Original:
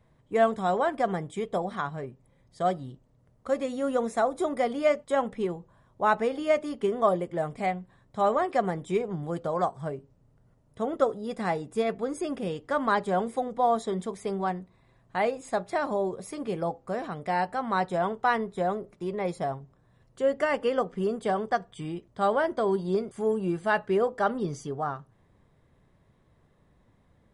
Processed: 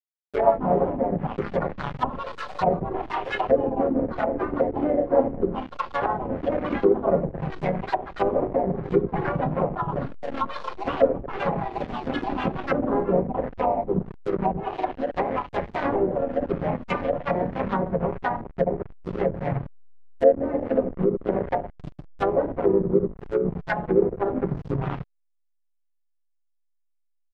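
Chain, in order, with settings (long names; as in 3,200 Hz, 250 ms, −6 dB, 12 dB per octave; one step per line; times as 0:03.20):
comb filter 7.3 ms, depth 86%
noise gate with hold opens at −57 dBFS
noise reduction from a noise print of the clip's start 19 dB
convolution reverb RT60 0.75 s, pre-delay 5 ms, DRR −1 dB
pitch-shifted copies added −3 semitones −9 dB, +4 semitones −8 dB
slack as between gear wheels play −17.5 dBFS
dynamic equaliser 2,100 Hz, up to +6 dB, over −44 dBFS, Q 2.2
delay with pitch and tempo change per echo 144 ms, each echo +6 semitones, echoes 2, each echo −6 dB
treble cut that deepens with the level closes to 510 Hz, closed at −17.5 dBFS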